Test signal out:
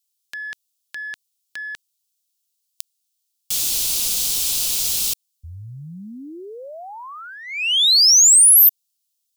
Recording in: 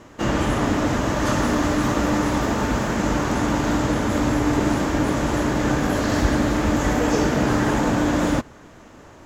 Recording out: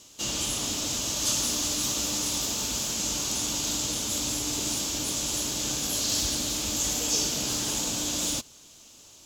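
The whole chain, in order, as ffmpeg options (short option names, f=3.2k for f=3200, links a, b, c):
-af "aexciter=amount=11.4:drive=7:freq=2.8k,volume=-16dB"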